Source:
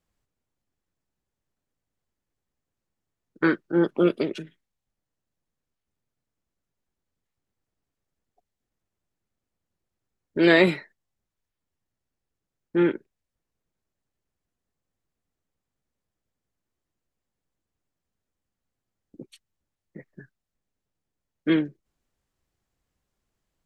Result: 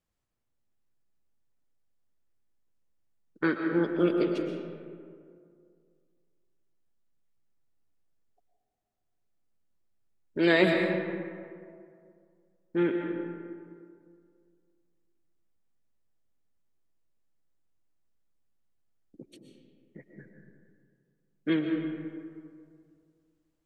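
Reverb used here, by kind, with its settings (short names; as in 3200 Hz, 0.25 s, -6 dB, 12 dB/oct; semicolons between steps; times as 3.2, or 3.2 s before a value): digital reverb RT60 2.2 s, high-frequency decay 0.45×, pre-delay 85 ms, DRR 3 dB; gain -5.5 dB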